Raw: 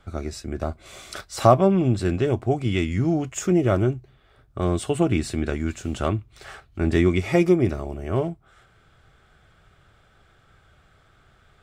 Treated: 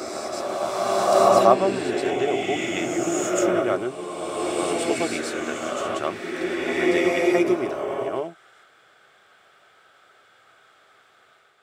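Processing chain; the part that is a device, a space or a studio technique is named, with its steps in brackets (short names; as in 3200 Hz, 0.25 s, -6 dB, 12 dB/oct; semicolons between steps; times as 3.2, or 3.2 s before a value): ghost voice (reverse; reverb RT60 3.0 s, pre-delay 0.1 s, DRR -4 dB; reverse; HPF 450 Hz 12 dB/oct)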